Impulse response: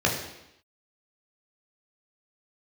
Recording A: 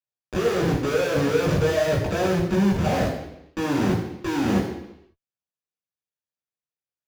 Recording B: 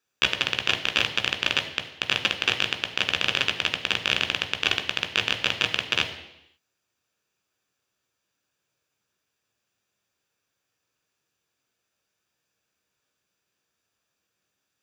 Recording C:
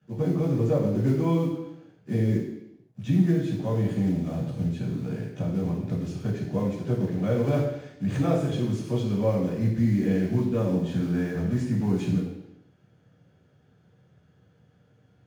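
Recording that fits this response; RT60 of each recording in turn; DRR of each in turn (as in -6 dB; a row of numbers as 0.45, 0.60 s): A; 0.85, 0.85, 0.85 s; -3.0, 5.0, -11.5 dB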